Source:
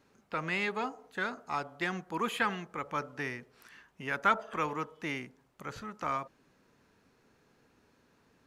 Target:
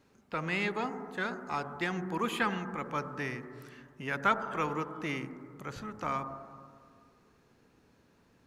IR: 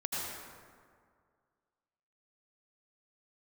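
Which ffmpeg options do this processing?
-filter_complex "[0:a]asplit=2[s0][s1];[s1]lowpass=f=1800:w=0.5412,lowpass=f=1800:w=1.3066[s2];[1:a]atrim=start_sample=2205,lowshelf=f=490:g=11.5[s3];[s2][s3]afir=irnorm=-1:irlink=0,volume=0.15[s4];[s0][s4]amix=inputs=2:normalize=0"

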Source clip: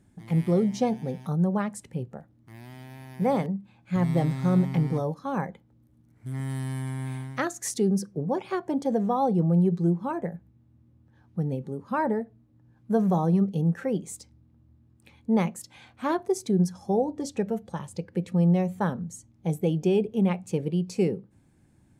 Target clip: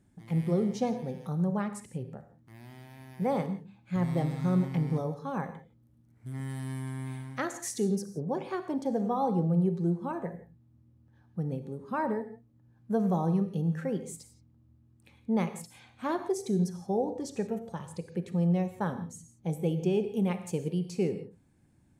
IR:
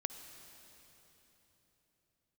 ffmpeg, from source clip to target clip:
-filter_complex "[0:a]asettb=1/sr,asplit=3[s0][s1][s2];[s0]atrim=end=20.074[s3];[s1]atrim=start=20.07:end=20.79,asetpts=PTS-STARTPTS,afade=t=in:d=0.004:c=qsin,afade=t=out:st=0.716:d=0.004:c=qsin,highshelf=f=6300:g=9.5[s4];[s2]atrim=start=20.786[s5];[s3][s4]acrossfade=d=0.004:c1=hsin:c2=qsin[s6];[s6][s5]acrossfade=d=0.004:c1=qsin:c2=hsin[s7];[1:a]atrim=start_sample=2205,afade=t=out:st=0.32:d=0.01,atrim=end_sample=14553,asetrate=66150,aresample=44100[s8];[s7][s8]afir=irnorm=-1:irlink=0"

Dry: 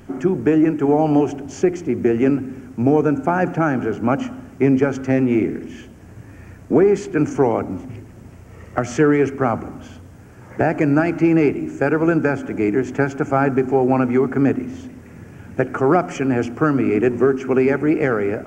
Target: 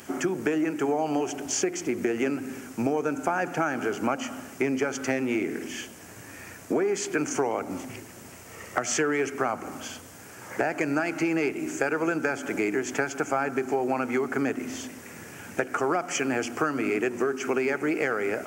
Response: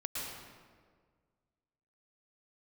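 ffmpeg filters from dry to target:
-af "highpass=f=600:p=1,highshelf=f=3500:g=11.5,acompressor=threshold=0.0447:ratio=4,volume=1.41"

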